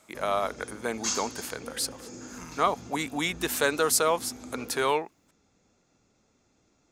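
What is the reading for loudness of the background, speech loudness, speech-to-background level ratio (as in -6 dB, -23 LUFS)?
-39.5 LUFS, -28.5 LUFS, 11.0 dB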